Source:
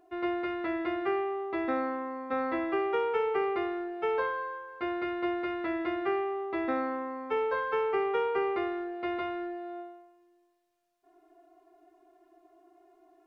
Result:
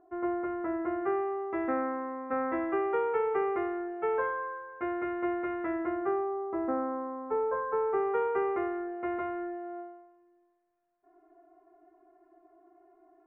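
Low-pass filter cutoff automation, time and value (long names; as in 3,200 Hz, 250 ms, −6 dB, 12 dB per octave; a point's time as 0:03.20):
low-pass filter 24 dB per octave
0:00.80 1,500 Hz
0:01.50 2,000 Hz
0:05.62 2,000 Hz
0:06.30 1,300 Hz
0:07.71 1,300 Hz
0:08.22 1,900 Hz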